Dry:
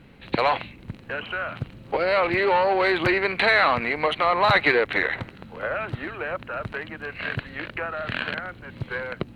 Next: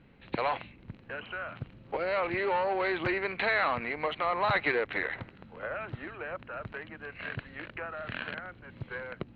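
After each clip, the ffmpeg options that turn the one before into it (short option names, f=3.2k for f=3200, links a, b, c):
-af "lowpass=3.5k,volume=-8.5dB"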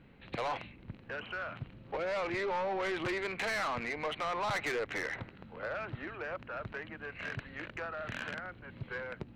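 -af "asoftclip=type=tanh:threshold=-30dB"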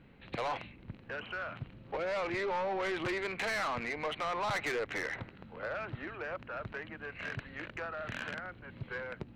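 -af anull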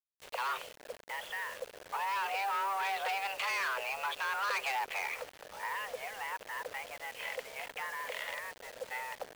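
-af "afreqshift=390,acrusher=bits=7:mix=0:aa=0.000001"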